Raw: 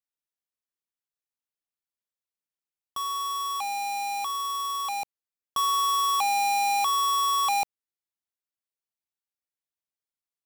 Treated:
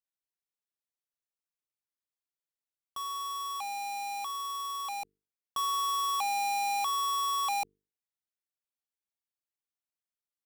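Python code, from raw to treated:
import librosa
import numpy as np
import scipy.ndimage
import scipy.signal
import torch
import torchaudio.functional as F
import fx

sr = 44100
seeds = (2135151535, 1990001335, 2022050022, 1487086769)

y = fx.hum_notches(x, sr, base_hz=50, count=9)
y = y * librosa.db_to_amplitude(-6.0)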